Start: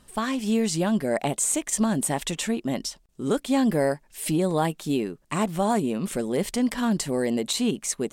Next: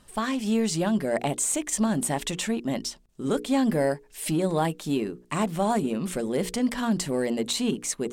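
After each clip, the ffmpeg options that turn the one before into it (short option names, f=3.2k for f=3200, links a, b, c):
-filter_complex "[0:a]highshelf=f=10k:g=-3.5,bandreject=f=60:t=h:w=6,bandreject=f=120:t=h:w=6,bandreject=f=180:t=h:w=6,bandreject=f=240:t=h:w=6,bandreject=f=300:t=h:w=6,bandreject=f=360:t=h:w=6,bandreject=f=420:t=h:w=6,bandreject=f=480:t=h:w=6,asplit=2[a][b];[b]volume=29.5dB,asoftclip=hard,volume=-29.5dB,volume=-12dB[c];[a][c]amix=inputs=2:normalize=0,volume=-1.5dB"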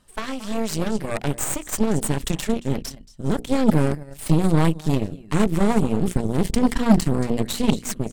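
-af "aecho=1:1:226:0.168,asubboost=boost=10:cutoff=130,aeval=exprs='0.316*(cos(1*acos(clip(val(0)/0.316,-1,1)))-cos(1*PI/2))+0.0708*(cos(3*acos(clip(val(0)/0.316,-1,1)))-cos(3*PI/2))+0.0355*(cos(6*acos(clip(val(0)/0.316,-1,1)))-cos(6*PI/2))':c=same,volume=6dB"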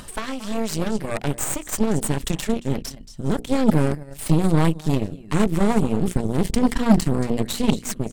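-af "acompressor=mode=upward:threshold=-25dB:ratio=2.5"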